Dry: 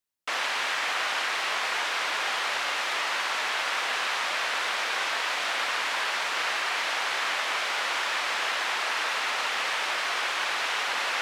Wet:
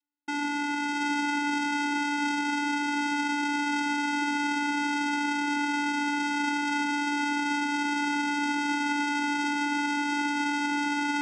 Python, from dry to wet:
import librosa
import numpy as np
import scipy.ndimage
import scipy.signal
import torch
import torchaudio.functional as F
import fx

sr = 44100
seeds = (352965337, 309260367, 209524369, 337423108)

p1 = fx.vibrato(x, sr, rate_hz=0.73, depth_cents=62.0)
p2 = fx.freq_invert(p1, sr, carrier_hz=3700)
p3 = p2 + fx.echo_single(p2, sr, ms=731, db=-3.0, dry=0)
y = fx.vocoder(p3, sr, bands=4, carrier='square', carrier_hz=290.0)